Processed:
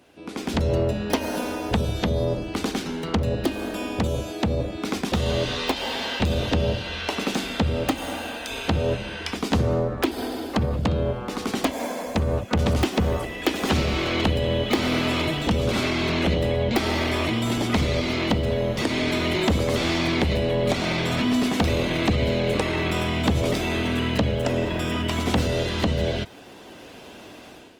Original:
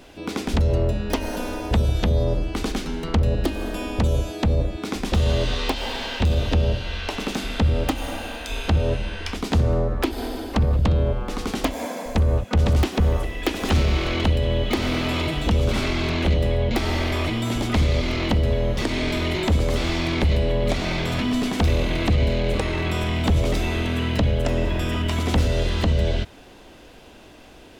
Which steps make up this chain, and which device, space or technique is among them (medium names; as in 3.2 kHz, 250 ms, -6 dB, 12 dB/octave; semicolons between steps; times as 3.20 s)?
video call (high-pass 110 Hz 12 dB/octave; level rider gain up to 12 dB; trim -7.5 dB; Opus 24 kbps 48 kHz)